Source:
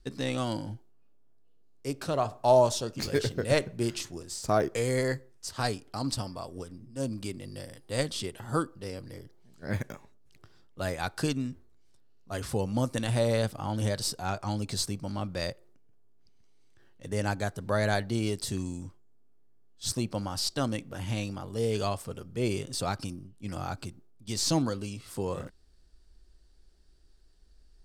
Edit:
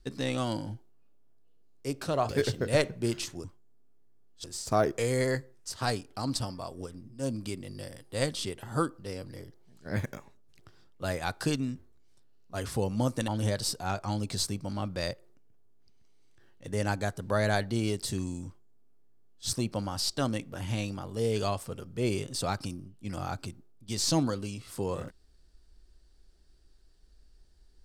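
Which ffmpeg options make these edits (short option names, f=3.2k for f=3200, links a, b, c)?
-filter_complex "[0:a]asplit=5[a][b][c][d][e];[a]atrim=end=2.292[f];[b]atrim=start=3.058:end=4.212[g];[c]atrim=start=18.848:end=19.852[h];[d]atrim=start=4.208:end=13.052[i];[e]atrim=start=13.668[j];[f][g]acrossfade=d=0.004:c1=hsin:c2=hsin[k];[k][h]acrossfade=d=0.004:c1=hsin:c2=hsin[l];[l][i]acrossfade=d=0.004:c1=hsin:c2=hsin[m];[m][j]acrossfade=d=0.004:c1=hsin:c2=hsin"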